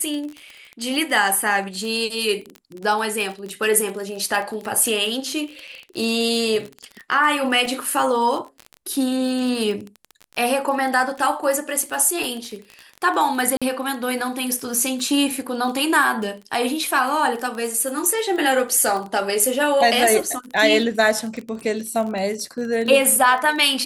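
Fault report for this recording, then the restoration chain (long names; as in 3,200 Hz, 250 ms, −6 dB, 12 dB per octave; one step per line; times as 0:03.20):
surface crackle 27 per second −26 dBFS
0:05.67–0:05.68: drop-out 5.9 ms
0:13.57–0:13.62: drop-out 46 ms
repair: click removal
repair the gap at 0:05.67, 5.9 ms
repair the gap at 0:13.57, 46 ms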